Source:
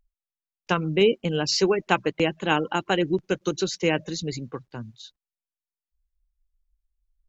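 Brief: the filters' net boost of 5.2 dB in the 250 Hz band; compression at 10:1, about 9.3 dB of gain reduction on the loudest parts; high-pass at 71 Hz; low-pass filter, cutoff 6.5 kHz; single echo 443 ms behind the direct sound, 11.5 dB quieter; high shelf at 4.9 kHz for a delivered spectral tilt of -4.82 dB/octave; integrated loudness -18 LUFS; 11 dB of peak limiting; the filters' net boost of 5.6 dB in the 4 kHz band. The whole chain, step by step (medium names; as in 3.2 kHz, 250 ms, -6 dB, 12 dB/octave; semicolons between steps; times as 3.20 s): high-pass 71 Hz; low-pass 6.5 kHz; peaking EQ 250 Hz +8.5 dB; peaking EQ 4 kHz +7 dB; treble shelf 4.9 kHz +3 dB; compression 10:1, threshold -21 dBFS; peak limiter -19.5 dBFS; delay 443 ms -11.5 dB; trim +12 dB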